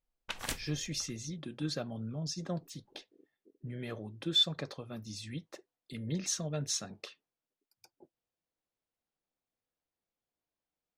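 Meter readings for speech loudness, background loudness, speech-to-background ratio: -36.0 LUFS, -40.0 LUFS, 4.0 dB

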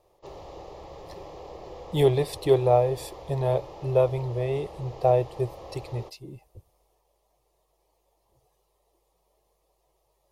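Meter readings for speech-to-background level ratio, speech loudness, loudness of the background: 18.0 dB, -25.5 LUFS, -43.5 LUFS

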